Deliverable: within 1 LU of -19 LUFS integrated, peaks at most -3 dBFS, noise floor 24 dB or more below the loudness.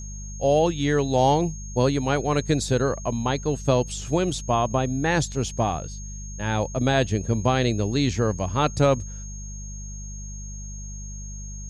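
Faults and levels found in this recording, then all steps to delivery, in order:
hum 50 Hz; harmonics up to 200 Hz; hum level -33 dBFS; steady tone 6500 Hz; tone level -40 dBFS; loudness -23.5 LUFS; peak -5.0 dBFS; loudness target -19.0 LUFS
-> de-hum 50 Hz, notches 4; notch 6500 Hz, Q 30; gain +4.5 dB; limiter -3 dBFS

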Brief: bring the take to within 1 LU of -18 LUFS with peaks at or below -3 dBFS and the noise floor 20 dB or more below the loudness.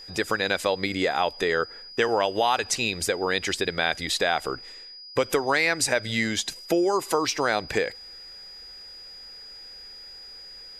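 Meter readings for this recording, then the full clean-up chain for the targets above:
steady tone 4900 Hz; tone level -41 dBFS; loudness -25.0 LUFS; peak -7.5 dBFS; loudness target -18.0 LUFS
-> notch 4900 Hz, Q 30; gain +7 dB; limiter -3 dBFS

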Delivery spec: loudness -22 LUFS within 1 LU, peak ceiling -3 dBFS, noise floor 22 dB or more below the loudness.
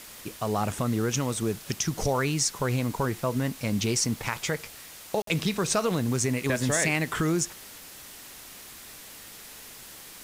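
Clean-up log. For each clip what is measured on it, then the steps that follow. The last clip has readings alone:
dropouts 1; longest dropout 53 ms; noise floor -46 dBFS; noise floor target -50 dBFS; loudness -27.5 LUFS; peak -12.0 dBFS; loudness target -22.0 LUFS
-> interpolate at 5.22, 53 ms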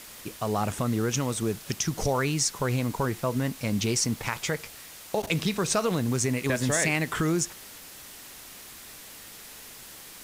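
dropouts 0; noise floor -46 dBFS; noise floor target -50 dBFS
-> denoiser 6 dB, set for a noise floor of -46 dBFS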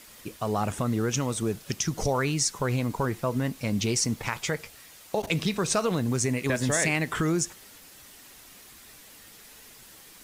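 noise floor -50 dBFS; loudness -27.5 LUFS; peak -12.0 dBFS; loudness target -22.0 LUFS
-> gain +5.5 dB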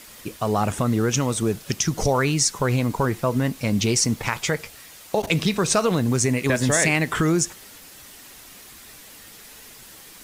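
loudness -22.0 LUFS; peak -6.5 dBFS; noise floor -45 dBFS

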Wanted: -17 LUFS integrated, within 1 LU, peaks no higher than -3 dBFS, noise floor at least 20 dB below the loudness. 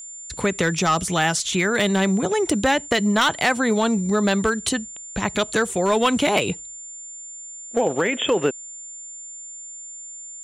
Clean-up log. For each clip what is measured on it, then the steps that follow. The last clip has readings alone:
clipped 0.4%; flat tops at -11.5 dBFS; steady tone 7200 Hz; tone level -35 dBFS; loudness -21.0 LUFS; peak -11.5 dBFS; loudness target -17.0 LUFS
-> clip repair -11.5 dBFS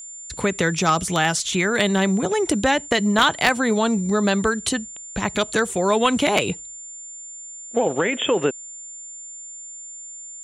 clipped 0.0%; steady tone 7200 Hz; tone level -35 dBFS
-> notch 7200 Hz, Q 30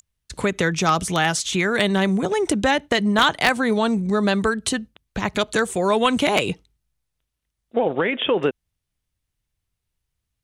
steady tone none; loudness -21.0 LUFS; peak -2.5 dBFS; loudness target -17.0 LUFS
-> gain +4 dB; limiter -3 dBFS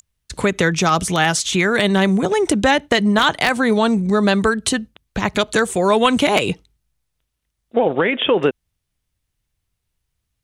loudness -17.5 LUFS; peak -3.0 dBFS; noise floor -76 dBFS

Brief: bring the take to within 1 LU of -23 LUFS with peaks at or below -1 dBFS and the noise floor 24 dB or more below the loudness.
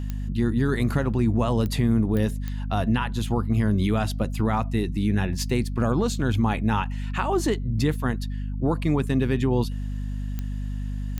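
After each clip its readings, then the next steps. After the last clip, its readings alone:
clicks 6; hum 50 Hz; harmonics up to 250 Hz; hum level -27 dBFS; loudness -25.0 LUFS; peak -12.0 dBFS; loudness target -23.0 LUFS
-> de-click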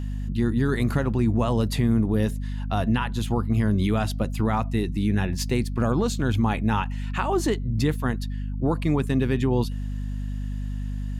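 clicks 0; hum 50 Hz; harmonics up to 250 Hz; hum level -27 dBFS
-> de-hum 50 Hz, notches 5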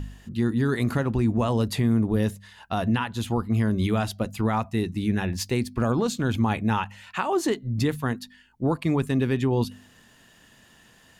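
hum none; loudness -25.5 LUFS; peak -12.0 dBFS; loudness target -23.0 LUFS
-> gain +2.5 dB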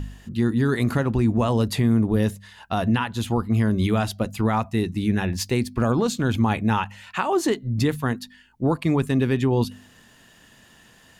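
loudness -23.0 LUFS; peak -9.5 dBFS; noise floor -53 dBFS

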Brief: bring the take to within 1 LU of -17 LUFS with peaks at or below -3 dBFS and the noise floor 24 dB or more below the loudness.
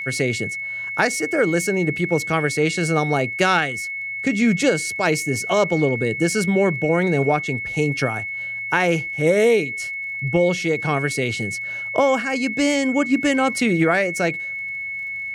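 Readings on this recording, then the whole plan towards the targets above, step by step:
ticks 26/s; steady tone 2200 Hz; tone level -26 dBFS; loudness -20.5 LUFS; peak -3.0 dBFS; loudness target -17.0 LUFS
-> de-click; notch 2200 Hz, Q 30; gain +3.5 dB; limiter -3 dBFS

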